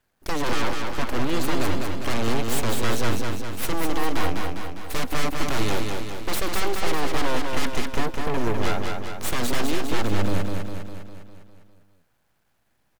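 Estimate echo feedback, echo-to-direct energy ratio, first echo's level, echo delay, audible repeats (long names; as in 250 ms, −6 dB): 58%, −2.0 dB, −4.0 dB, 202 ms, 7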